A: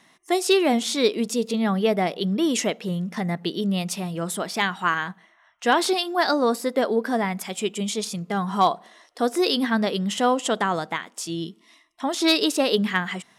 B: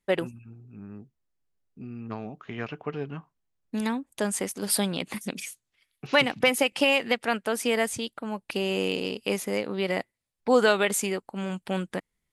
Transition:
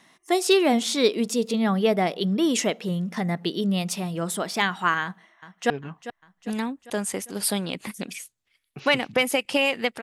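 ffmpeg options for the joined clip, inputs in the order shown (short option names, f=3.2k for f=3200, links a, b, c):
-filter_complex "[0:a]apad=whole_dur=10.02,atrim=end=10.02,atrim=end=5.702[a];[1:a]atrim=start=2.968:end=7.29[b];[a][b]acrossfade=d=0.004:c1=hsin:c2=hsin,asplit=2[c][d];[d]afade=t=in:st=5.02:d=0.01,afade=t=out:st=5.7:d=0.01,aecho=0:1:400|800|1200|1600|2000|2400:0.211349|0.116242|0.063933|0.0351632|0.0193397|0.0106369[e];[c][e]amix=inputs=2:normalize=0"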